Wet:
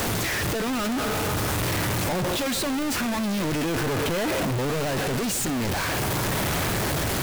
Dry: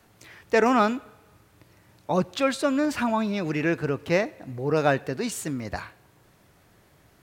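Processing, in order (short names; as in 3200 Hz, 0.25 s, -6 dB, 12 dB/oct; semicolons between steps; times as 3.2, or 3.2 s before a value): infinite clipping; in parallel at -10 dB: decimation with a swept rate 22×, swing 160% 0.42 Hz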